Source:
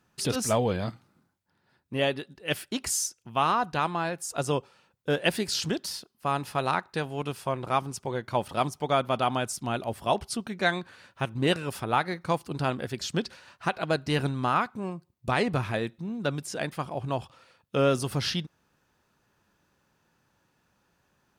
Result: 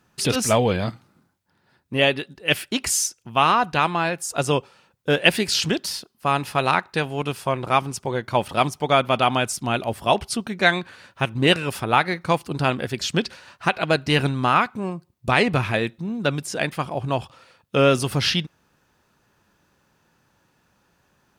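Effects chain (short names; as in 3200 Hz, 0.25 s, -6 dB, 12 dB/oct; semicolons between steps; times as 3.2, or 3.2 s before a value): dynamic EQ 2500 Hz, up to +6 dB, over -44 dBFS, Q 1.5; gain +6 dB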